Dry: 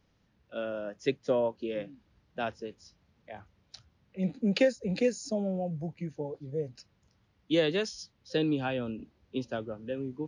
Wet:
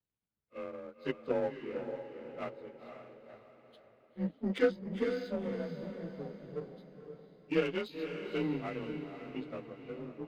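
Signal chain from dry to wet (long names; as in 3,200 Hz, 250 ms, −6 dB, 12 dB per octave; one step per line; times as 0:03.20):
partials spread apart or drawn together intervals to 90%
power curve on the samples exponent 1.4
feedback delay with all-pass diffusion 508 ms, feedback 44%, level −7.5 dB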